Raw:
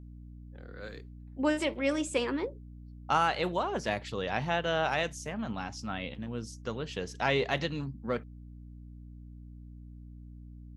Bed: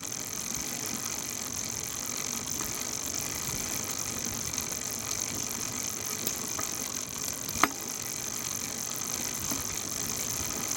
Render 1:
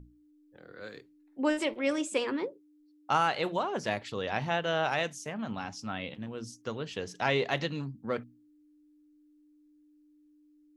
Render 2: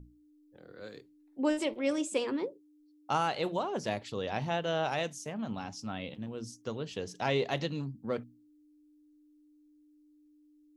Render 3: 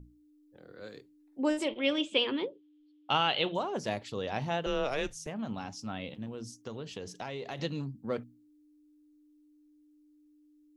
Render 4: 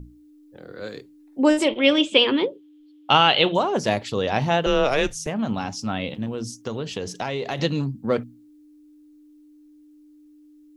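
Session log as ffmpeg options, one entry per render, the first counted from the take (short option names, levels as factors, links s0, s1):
-af "bandreject=f=60:t=h:w=6,bandreject=f=120:t=h:w=6,bandreject=f=180:t=h:w=6,bandreject=f=240:t=h:w=6"
-af "equalizer=f=1700:t=o:w=1.6:g=-6.5"
-filter_complex "[0:a]asettb=1/sr,asplit=3[s0][s1][s2];[s0]atrim=end=1.684[s3];[s1]atrim=start=1.68:end=3.55,asetpts=PTS-STARTPTS,afade=t=in:d=0.004:c=qsin,afade=t=out:st=1.866:d=0.004:c=qsin,lowpass=f=3200:t=q:w=6.3[s4];[s2]atrim=start=3.546[s5];[s3][s4]acrossfade=d=0.004:c1=hsin:c2=qsin[s6];[s6][s5]acrossfade=d=0.004:c1=qsin:c2=hsin,asettb=1/sr,asplit=3[s7][s8][s9];[s7]atrim=end=4.664[s10];[s8]atrim=start=4.66:end=5.27,asetpts=PTS-STARTPTS,afade=t=in:d=0.004:c=qsin,afade=t=out:st=0.606:d=0.004:c=qsin,afreqshift=-140[s11];[s9]atrim=start=5.266[s12];[s10][s11]acrossfade=d=0.004:c1=hsin:c2=qsin[s13];[s13][s12]acrossfade=d=0.004:c1=qsin:c2=hsin,asplit=3[s14][s15][s16];[s14]afade=t=out:st=6.3:d=0.02[s17];[s15]acompressor=threshold=0.0178:ratio=6:attack=3.2:release=140:knee=1:detection=peak,afade=t=in:st=6.3:d=0.02,afade=t=out:st=7.58:d=0.02[s18];[s16]afade=t=in:st=7.58:d=0.02[s19];[s17][s18][s19]amix=inputs=3:normalize=0"
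-af "volume=3.76,alimiter=limit=0.794:level=0:latency=1"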